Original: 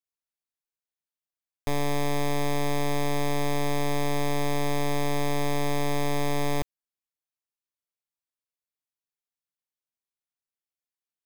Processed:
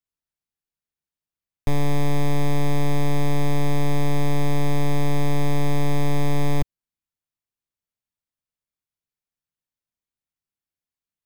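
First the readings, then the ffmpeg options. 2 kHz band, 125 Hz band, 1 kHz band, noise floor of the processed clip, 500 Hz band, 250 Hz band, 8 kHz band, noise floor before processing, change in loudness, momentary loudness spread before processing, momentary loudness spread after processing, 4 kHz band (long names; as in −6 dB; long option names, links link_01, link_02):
0.0 dB, +9.0 dB, 0.0 dB, below −85 dBFS, +1.0 dB, +5.0 dB, −2.0 dB, below −85 dBFS, +3.5 dB, 2 LU, 2 LU, −1.0 dB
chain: -af "bass=frequency=250:gain=10,treble=frequency=4000:gain=-2"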